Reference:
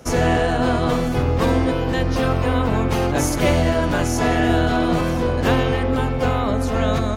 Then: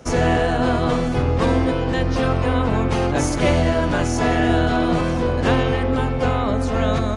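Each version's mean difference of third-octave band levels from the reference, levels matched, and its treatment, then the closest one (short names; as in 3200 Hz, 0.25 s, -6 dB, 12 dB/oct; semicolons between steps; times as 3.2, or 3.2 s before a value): 1.5 dB: high shelf 8200 Hz -5.5 dB; downsampling 22050 Hz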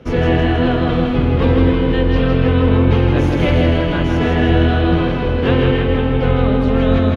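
6.5 dB: EQ curve 470 Hz 0 dB, 680 Hz -8 dB, 3200 Hz -1 dB, 7400 Hz -27 dB; on a send: feedback echo 0.16 s, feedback 59%, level -4 dB; on the sum: gain +3.5 dB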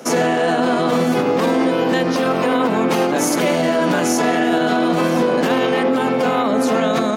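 3.5 dB: Chebyshev high-pass 180 Hz, order 4; limiter -17 dBFS, peak gain reduction 11 dB; gain +8.5 dB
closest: first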